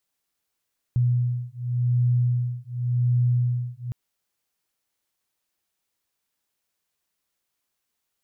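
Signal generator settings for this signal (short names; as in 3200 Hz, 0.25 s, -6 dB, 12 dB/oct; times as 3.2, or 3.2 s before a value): beating tones 122 Hz, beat 0.89 Hz, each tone -23 dBFS 2.96 s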